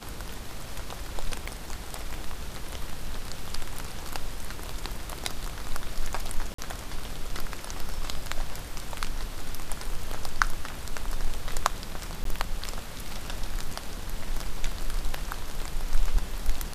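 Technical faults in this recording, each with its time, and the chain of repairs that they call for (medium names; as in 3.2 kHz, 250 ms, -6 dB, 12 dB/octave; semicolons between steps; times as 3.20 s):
1.46 s: dropout 4 ms
6.54–6.58 s: dropout 44 ms
12.24–12.25 s: dropout 13 ms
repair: interpolate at 1.46 s, 4 ms; interpolate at 6.54 s, 44 ms; interpolate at 12.24 s, 13 ms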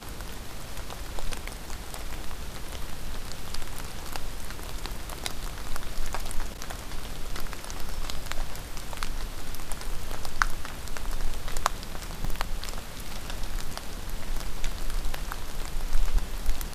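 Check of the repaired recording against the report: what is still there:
nothing left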